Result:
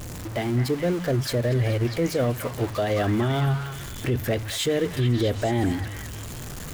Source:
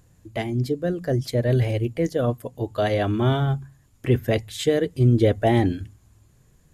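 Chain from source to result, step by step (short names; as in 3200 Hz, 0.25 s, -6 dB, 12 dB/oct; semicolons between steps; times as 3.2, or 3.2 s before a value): zero-crossing step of -30 dBFS; limiter -15.5 dBFS, peak gain reduction 8 dB; on a send: delay with a stepping band-pass 0.214 s, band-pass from 1400 Hz, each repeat 0.7 oct, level -2 dB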